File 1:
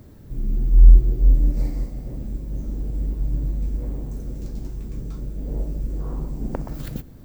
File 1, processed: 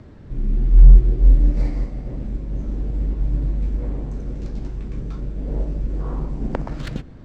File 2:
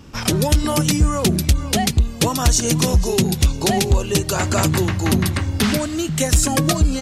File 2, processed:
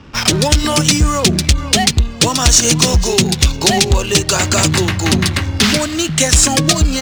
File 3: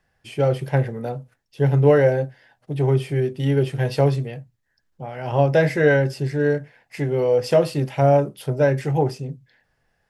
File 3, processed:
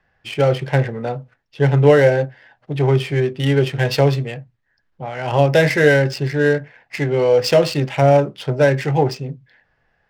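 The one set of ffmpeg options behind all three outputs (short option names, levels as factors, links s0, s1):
-filter_complex "[0:a]lowpass=f=9600:w=0.5412,lowpass=f=9600:w=1.3066,tiltshelf=f=1100:g=-5,acrossover=split=640|2200[s0][s1][s2];[s1]alimiter=limit=0.0841:level=0:latency=1:release=123[s3];[s0][s3][s2]amix=inputs=3:normalize=0,asoftclip=type=hard:threshold=0.335,adynamicsmooth=sensitivity=7:basefreq=2400,volume=2.37"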